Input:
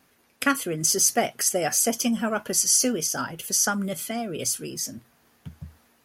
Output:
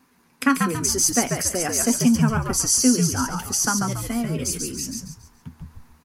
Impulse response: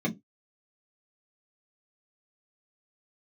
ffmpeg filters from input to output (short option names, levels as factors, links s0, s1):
-filter_complex "[0:a]equalizer=f=250:t=o:w=0.33:g=10,equalizer=f=630:t=o:w=0.33:g=-9,equalizer=f=1000:t=o:w=0.33:g=9,equalizer=f=3150:t=o:w=0.33:g=-5,equalizer=f=12500:t=o:w=0.33:g=-4,asplit=5[s0][s1][s2][s3][s4];[s1]adelay=140,afreqshift=-77,volume=0.631[s5];[s2]adelay=280,afreqshift=-154,volume=0.202[s6];[s3]adelay=420,afreqshift=-231,volume=0.0646[s7];[s4]adelay=560,afreqshift=-308,volume=0.0207[s8];[s0][s5][s6][s7][s8]amix=inputs=5:normalize=0"